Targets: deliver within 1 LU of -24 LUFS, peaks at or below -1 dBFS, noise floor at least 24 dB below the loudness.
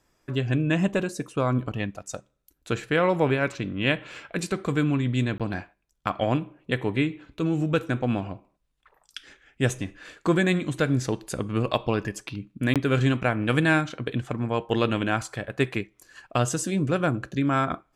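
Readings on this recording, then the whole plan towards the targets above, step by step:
dropouts 2; longest dropout 17 ms; loudness -26.0 LUFS; peak -7.5 dBFS; loudness target -24.0 LUFS
-> interpolate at 5.38/12.74, 17 ms; gain +2 dB

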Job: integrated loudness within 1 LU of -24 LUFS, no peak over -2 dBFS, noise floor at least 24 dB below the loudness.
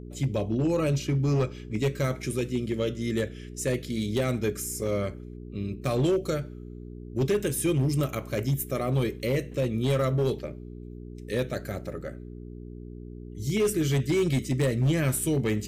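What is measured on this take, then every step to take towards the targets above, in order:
clipped 1.5%; flat tops at -19.0 dBFS; hum 60 Hz; harmonics up to 420 Hz; hum level -38 dBFS; loudness -28.0 LUFS; peak -19.0 dBFS; loudness target -24.0 LUFS
-> clip repair -19 dBFS; de-hum 60 Hz, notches 7; gain +4 dB

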